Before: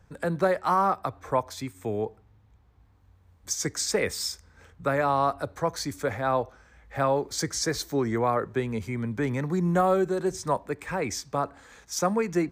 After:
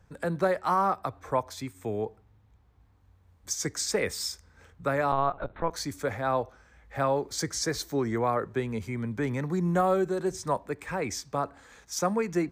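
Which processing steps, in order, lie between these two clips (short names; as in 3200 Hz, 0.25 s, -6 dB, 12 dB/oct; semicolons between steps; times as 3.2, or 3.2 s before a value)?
5.12–5.71 LPC vocoder at 8 kHz pitch kept; gain -2 dB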